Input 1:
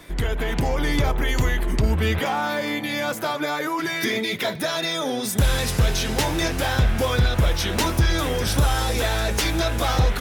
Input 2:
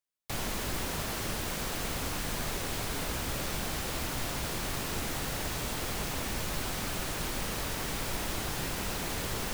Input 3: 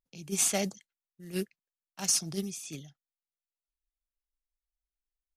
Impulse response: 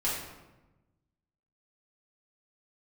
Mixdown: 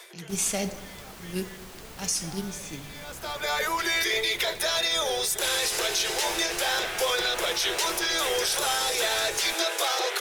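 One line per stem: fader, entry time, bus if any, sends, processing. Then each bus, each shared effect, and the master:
−1.5 dB, 0.00 s, no send, Chebyshev high-pass filter 340 Hz, order 10; parametric band 7,100 Hz +8.5 dB 2.7 octaves; automatic ducking −22 dB, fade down 0.30 s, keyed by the third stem
−10.5 dB, 0.00 s, no send, no processing
+0.5 dB, 0.00 s, send −15 dB, no processing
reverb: on, RT60 1.1 s, pre-delay 4 ms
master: brickwall limiter −16 dBFS, peak gain reduction 10 dB

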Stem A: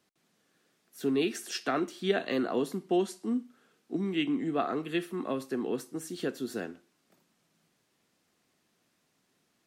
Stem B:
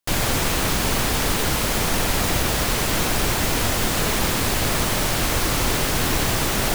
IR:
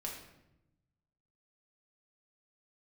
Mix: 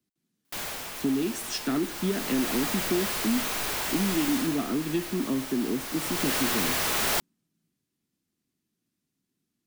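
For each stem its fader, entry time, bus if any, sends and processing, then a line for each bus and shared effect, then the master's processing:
−0.5 dB, 0.00 s, no send, low shelf with overshoot 400 Hz +10.5 dB, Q 1.5; downward compressor, threshold −23 dBFS, peak gain reduction 9.5 dB; multiband upward and downward expander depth 40%
0:01.89 −23.5 dB → 0:02.50 −15 dB → 0:04.33 −15 dB → 0:04.63 −23.5 dB → 0:05.78 −23.5 dB → 0:06.33 −11.5 dB, 0.45 s, send −6.5 dB, mid-hump overdrive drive 34 dB, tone 4,500 Hz, clips at −6.5 dBFS; automatic ducking −8 dB, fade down 0.30 s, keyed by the first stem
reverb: on, RT60 0.90 s, pre-delay 5 ms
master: high-shelf EQ 11,000 Hz +12 dB; soft clipping −16.5 dBFS, distortion −23 dB

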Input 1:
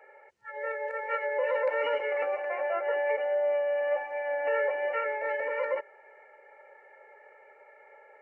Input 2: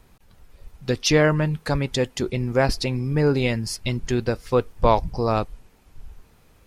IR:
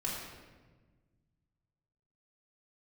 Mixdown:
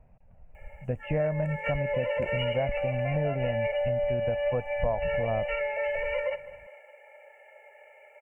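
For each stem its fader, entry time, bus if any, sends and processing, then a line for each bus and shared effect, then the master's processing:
−1.0 dB, 0.55 s, no send, echo send −18 dB, no processing
−2.5 dB, 0.00 s, no send, no echo send, Gaussian smoothing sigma 6.3 samples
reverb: not used
echo: repeating echo 203 ms, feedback 47%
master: drawn EQ curve 170 Hz 0 dB, 370 Hz −13 dB, 620 Hz +7 dB, 1,200 Hz −9 dB, 1,700 Hz −2 dB, 2,800 Hz +14 dB, 3,900 Hz −11 dB, 8,400 Hz +15 dB, 12,000 Hz +13 dB; downward compressor 4 to 1, threshold −25 dBFS, peak gain reduction 10 dB

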